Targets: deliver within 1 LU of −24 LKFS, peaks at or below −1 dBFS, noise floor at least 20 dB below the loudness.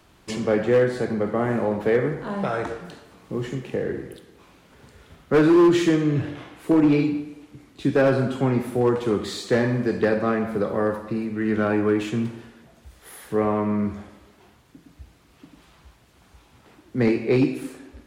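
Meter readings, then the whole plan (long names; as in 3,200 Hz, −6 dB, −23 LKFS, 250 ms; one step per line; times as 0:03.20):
share of clipped samples 1.0%; peaks flattened at −12.0 dBFS; integrated loudness −22.5 LKFS; sample peak −12.0 dBFS; target loudness −24.0 LKFS
→ clipped peaks rebuilt −12 dBFS
level −1.5 dB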